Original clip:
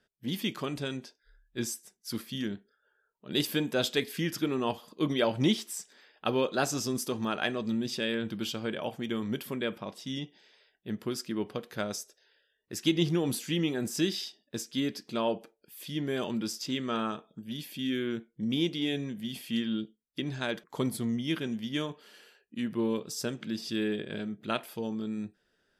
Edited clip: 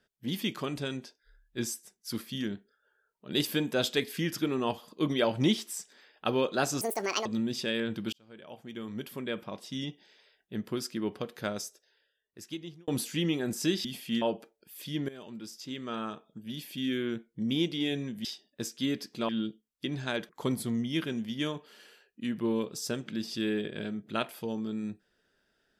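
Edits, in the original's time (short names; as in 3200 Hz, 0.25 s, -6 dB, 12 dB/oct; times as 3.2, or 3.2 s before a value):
6.81–7.6 speed 177%
8.47–10 fade in linear
11.8–13.22 fade out
14.19–15.23 swap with 19.26–19.63
16.1–17.77 fade in, from -16.5 dB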